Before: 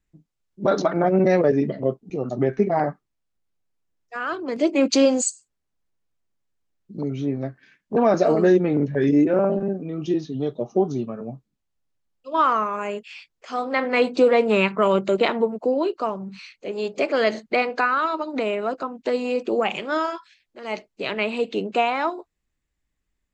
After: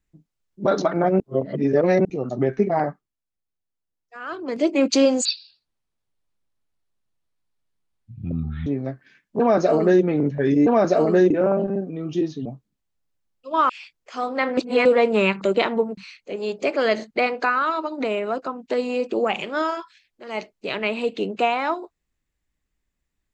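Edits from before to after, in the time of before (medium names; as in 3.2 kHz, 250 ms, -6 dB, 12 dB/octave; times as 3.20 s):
1.20–2.05 s: reverse
2.80–4.50 s: dip -8.5 dB, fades 0.32 s
5.25–7.23 s: speed 58%
7.96–8.60 s: copy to 9.23 s
10.38–11.26 s: delete
12.50–13.05 s: delete
13.93–14.21 s: reverse
14.77–15.05 s: delete
15.61–16.33 s: delete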